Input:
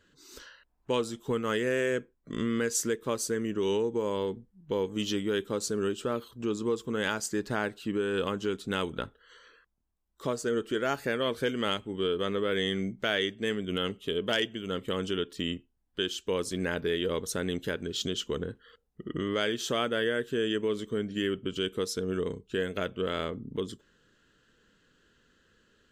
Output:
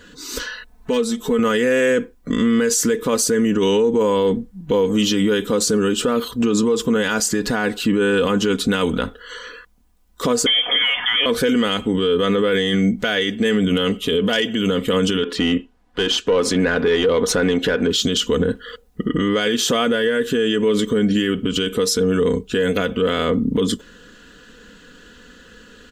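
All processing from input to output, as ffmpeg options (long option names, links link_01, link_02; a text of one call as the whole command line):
ffmpeg -i in.wav -filter_complex "[0:a]asettb=1/sr,asplit=3[link_01][link_02][link_03];[link_01]atrim=end=0.434[link_04];[link_02]atrim=start=0.43:end=1.39,asetpts=PTS-STARTPTS,afade=type=in:duration=0.004:curve=qsin,afade=type=out:start_time=0.956:duration=0.004:curve=qsin,asoftclip=type=hard:threshold=-19dB,aecho=1:1:4.6:0.7,atrim=end_sample=42336,acompressor=threshold=-48dB:ratio=2:attack=3.2:release=140:knee=1:detection=peak[link_05];[link_03]atrim=start=1.386[link_06];[link_04][link_05]acrossfade=duration=0.004:curve1=hsin:curve2=qsin[link_07];[link_07][link_06]acrossfade=duration=0.004:curve1=qsin:curve2=hsin,asettb=1/sr,asplit=3[link_08][link_09][link_10];[link_08]atrim=end=10.464[link_11];[link_09]atrim=start=10.46:end=11.26,asetpts=PTS-STARTPTS,afade=type=in:duration=0.004:curve=qsin,afade=type=out:start_time=0.796:duration=0.004:curve=qsin,aeval=exprs='val(0)+0.5*0.00631*sgn(val(0))':channel_layout=same,lowshelf=frequency=300:gain=-11,lowpass=frequency=3100:width_type=q:width=0.5098,lowpass=frequency=3100:width_type=q:width=0.6013,lowpass=frequency=3100:width_type=q:width=0.9,lowpass=frequency=3100:width_type=q:width=2.563,afreqshift=-3600[link_12];[link_10]atrim=start=11.256[link_13];[link_11][link_12]acrossfade=duration=0.004:curve1=hsin:curve2=qsin[link_14];[link_14][link_13]acrossfade=duration=0.004:curve1=qsin:curve2=hsin,asettb=1/sr,asplit=3[link_15][link_16][link_17];[link_15]atrim=end=15.234[link_18];[link_16]atrim=start=15.23:end=17.91,asetpts=PTS-STARTPTS,afade=type=in:duration=0.004:curve=qsin,afade=type=out:start_time=2.676:duration=0.004:curve=qsin,asplit=2[link_19][link_20];[link_20]highpass=frequency=720:poles=1,volume=15dB,asoftclip=type=tanh:threshold=-15dB[link_21];[link_19][link_21]amix=inputs=2:normalize=0,lowpass=frequency=1300:poles=1,volume=-6dB,highshelf=frequency=9800:gain=-5.5[link_22];[link_17]atrim=start=17.906[link_23];[link_18][link_22]acrossfade=duration=0.004:curve1=hsin:curve2=qsin[link_24];[link_24][link_23]acrossfade=duration=0.004:curve1=qsin:curve2=hsin,aecho=1:1:4.1:0.57,acontrast=89,alimiter=level_in=21.5dB:limit=-1dB:release=50:level=0:latency=1,volume=-9dB" out.wav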